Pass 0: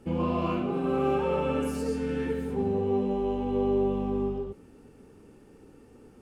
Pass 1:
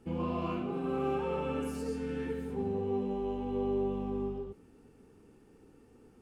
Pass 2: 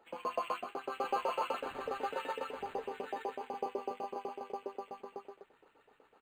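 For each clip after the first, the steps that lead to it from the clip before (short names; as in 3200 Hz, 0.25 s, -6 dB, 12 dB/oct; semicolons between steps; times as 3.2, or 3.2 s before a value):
notch 570 Hz, Q 12; gain -6 dB
LFO high-pass saw up 8 Hz 550–4800 Hz; echo 0.909 s -3.5 dB; decimation joined by straight lines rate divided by 8×; gain +2 dB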